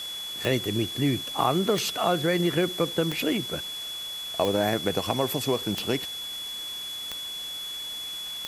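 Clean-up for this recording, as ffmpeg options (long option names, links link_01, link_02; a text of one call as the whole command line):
ffmpeg -i in.wav -af "adeclick=threshold=4,bandreject=frequency=3400:width=30,afftdn=noise_reduction=30:noise_floor=-35" out.wav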